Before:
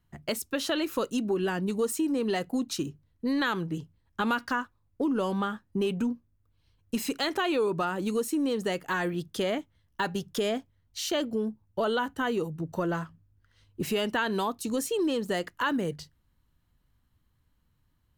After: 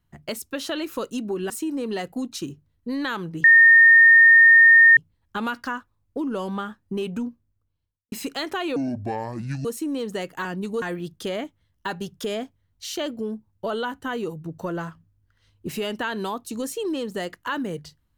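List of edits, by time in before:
1.50–1.87 s: move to 8.96 s
3.81 s: add tone 1.83 kHz -8.5 dBFS 1.53 s
6.12–6.96 s: studio fade out
7.60–8.16 s: speed 63%

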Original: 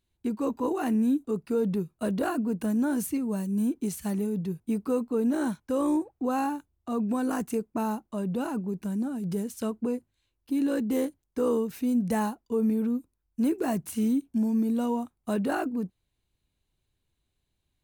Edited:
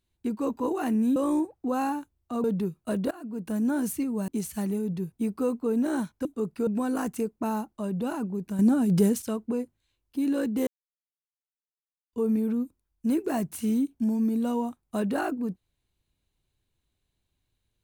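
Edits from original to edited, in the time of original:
1.16–1.58 s: swap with 5.73–7.01 s
2.25–2.77 s: fade in, from -23.5 dB
3.42–3.76 s: delete
8.93–9.56 s: gain +9 dB
11.01–12.47 s: mute

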